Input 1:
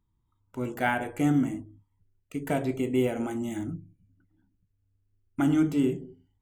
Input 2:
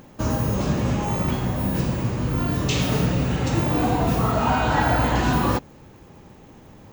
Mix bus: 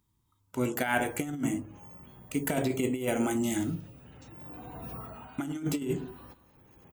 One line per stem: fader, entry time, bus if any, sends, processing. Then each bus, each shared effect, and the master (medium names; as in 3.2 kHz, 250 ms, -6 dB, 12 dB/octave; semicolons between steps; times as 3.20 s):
0.0 dB, 0.00 s, no send, no echo send, high-pass 84 Hz 6 dB/octave
-13.5 dB, 0.75 s, no send, echo send -23.5 dB, spectral gate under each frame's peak -30 dB strong; compression 6:1, threshold -29 dBFS, peak gain reduction 12.5 dB; auto duck -10 dB, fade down 0.40 s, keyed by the first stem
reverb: none
echo: feedback delay 180 ms, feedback 43%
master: compressor with a negative ratio -28 dBFS, ratio -0.5; treble shelf 3.3 kHz +10 dB